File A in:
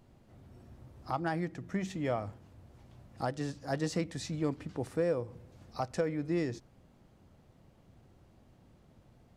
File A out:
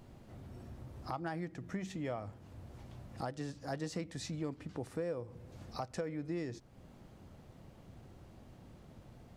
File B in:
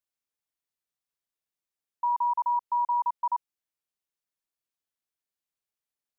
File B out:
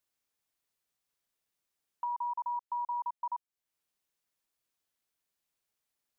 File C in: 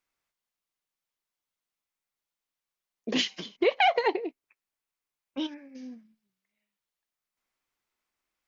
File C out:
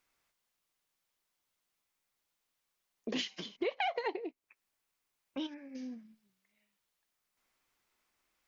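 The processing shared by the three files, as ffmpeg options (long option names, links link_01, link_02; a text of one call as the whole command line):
ffmpeg -i in.wav -af "acompressor=threshold=-51dB:ratio=2,volume=5.5dB" out.wav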